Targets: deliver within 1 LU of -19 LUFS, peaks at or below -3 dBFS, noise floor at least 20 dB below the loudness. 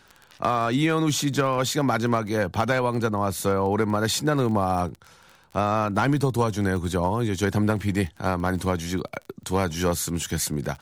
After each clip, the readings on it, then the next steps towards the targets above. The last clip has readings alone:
ticks 28/s; loudness -24.5 LUFS; peak -10.0 dBFS; loudness target -19.0 LUFS
-> de-click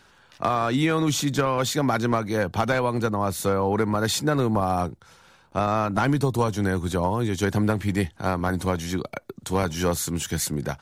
ticks 0.093/s; loudness -24.5 LUFS; peak -9.5 dBFS; loudness target -19.0 LUFS
-> gain +5.5 dB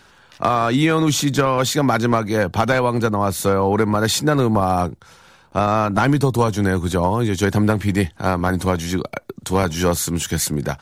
loudness -19.0 LUFS; peak -4.0 dBFS; noise floor -51 dBFS

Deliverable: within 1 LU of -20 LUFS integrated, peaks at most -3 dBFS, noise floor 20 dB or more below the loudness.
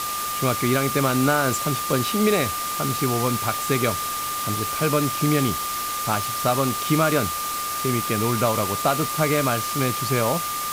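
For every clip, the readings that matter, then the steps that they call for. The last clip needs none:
steady tone 1200 Hz; tone level -27 dBFS; noise floor -28 dBFS; noise floor target -42 dBFS; loudness -22.0 LUFS; peak -7.0 dBFS; loudness target -20.0 LUFS
-> notch 1200 Hz, Q 30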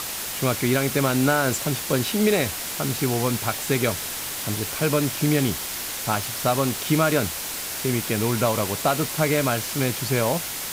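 steady tone none; noise floor -31 dBFS; noise floor target -43 dBFS
-> noise print and reduce 12 dB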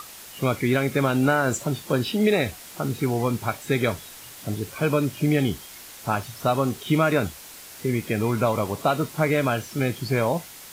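noise floor -43 dBFS; noise floor target -45 dBFS
-> noise print and reduce 6 dB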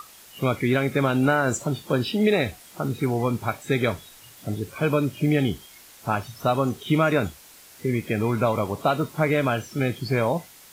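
noise floor -49 dBFS; loudness -24.5 LUFS; peak -9.0 dBFS; loudness target -20.0 LUFS
-> gain +4.5 dB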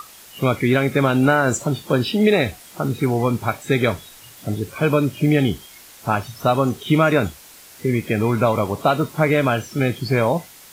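loudness -20.0 LUFS; peak -4.5 dBFS; noise floor -44 dBFS

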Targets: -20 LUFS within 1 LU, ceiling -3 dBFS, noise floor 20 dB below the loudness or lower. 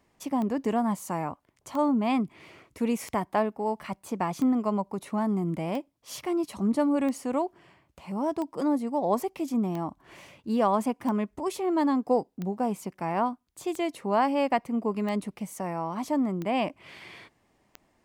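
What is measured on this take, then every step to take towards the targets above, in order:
clicks 14; loudness -29.0 LUFS; peak -13.0 dBFS; loudness target -20.0 LUFS
-> de-click; gain +9 dB

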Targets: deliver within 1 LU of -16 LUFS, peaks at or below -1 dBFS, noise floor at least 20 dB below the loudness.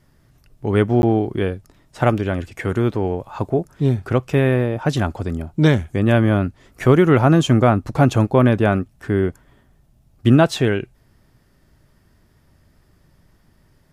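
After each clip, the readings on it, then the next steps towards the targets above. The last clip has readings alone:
dropouts 1; longest dropout 11 ms; loudness -18.5 LUFS; peak -2.5 dBFS; loudness target -16.0 LUFS
-> interpolate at 1.02, 11 ms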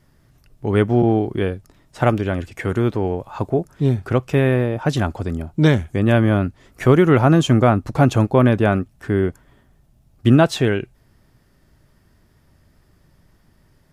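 dropouts 0; loudness -18.5 LUFS; peak -2.5 dBFS; loudness target -16.0 LUFS
-> gain +2.5 dB; limiter -1 dBFS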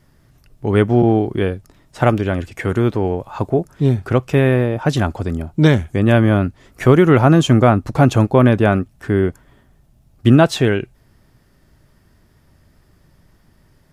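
loudness -16.0 LUFS; peak -1.0 dBFS; noise floor -55 dBFS

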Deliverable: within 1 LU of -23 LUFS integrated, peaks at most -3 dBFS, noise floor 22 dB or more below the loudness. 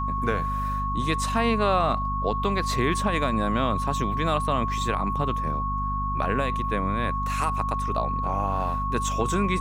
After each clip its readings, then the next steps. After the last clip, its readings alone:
hum 50 Hz; harmonics up to 250 Hz; hum level -27 dBFS; steady tone 1100 Hz; tone level -27 dBFS; loudness -25.5 LUFS; peak -10.0 dBFS; loudness target -23.0 LUFS
-> de-hum 50 Hz, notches 5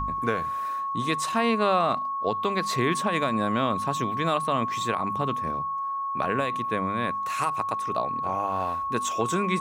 hum none; steady tone 1100 Hz; tone level -27 dBFS
-> notch 1100 Hz, Q 30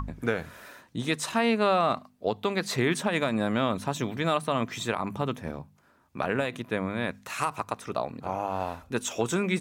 steady tone none; loudness -29.0 LUFS; peak -12.5 dBFS; loudness target -23.0 LUFS
-> gain +6 dB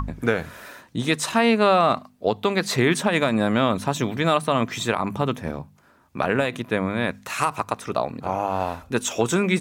loudness -23.0 LUFS; peak -6.5 dBFS; noise floor -56 dBFS

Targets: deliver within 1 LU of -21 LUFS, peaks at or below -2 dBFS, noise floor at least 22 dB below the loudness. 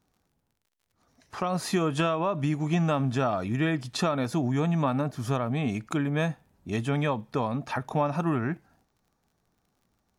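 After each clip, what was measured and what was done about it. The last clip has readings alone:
ticks 27/s; loudness -28.0 LUFS; peak -15.5 dBFS; loudness target -21.0 LUFS
-> de-click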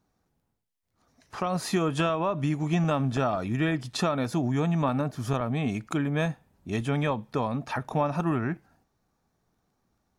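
ticks 0/s; loudness -28.0 LUFS; peak -15.5 dBFS; loudness target -21.0 LUFS
-> gain +7 dB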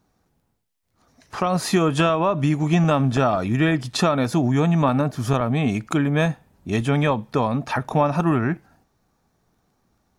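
loudness -21.0 LUFS; peak -8.0 dBFS; noise floor -70 dBFS

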